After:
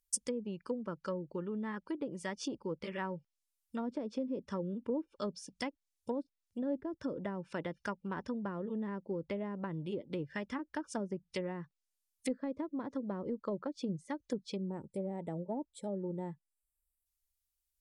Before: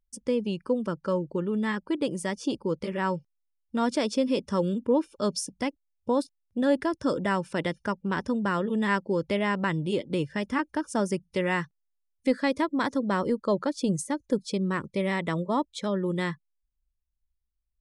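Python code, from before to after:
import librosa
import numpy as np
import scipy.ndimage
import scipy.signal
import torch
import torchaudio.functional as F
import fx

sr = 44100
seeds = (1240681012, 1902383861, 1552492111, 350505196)

y = fx.spec_box(x, sr, start_s=14.56, length_s=2.5, low_hz=940.0, high_hz=7200.0, gain_db=-20)
y = fx.env_lowpass_down(y, sr, base_hz=470.0, full_db=-22.0)
y = librosa.effects.preemphasis(y, coef=0.9, zi=[0.0])
y = y * 10.0 ** (9.0 / 20.0)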